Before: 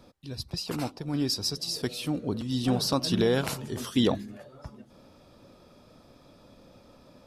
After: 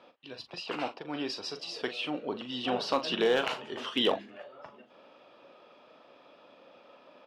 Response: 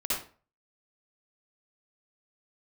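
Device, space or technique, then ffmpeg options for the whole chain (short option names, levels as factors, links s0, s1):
megaphone: -filter_complex "[0:a]highpass=500,lowpass=2500,equalizer=f=2900:t=o:w=0.4:g=10,asoftclip=type=hard:threshold=0.0944,asplit=2[s0][s1];[s1]adelay=40,volume=0.299[s2];[s0][s2]amix=inputs=2:normalize=0,volume=1.41"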